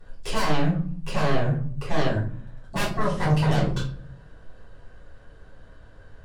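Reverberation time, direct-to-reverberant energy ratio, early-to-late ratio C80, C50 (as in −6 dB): 0.45 s, −10.0 dB, 11.5 dB, 6.0 dB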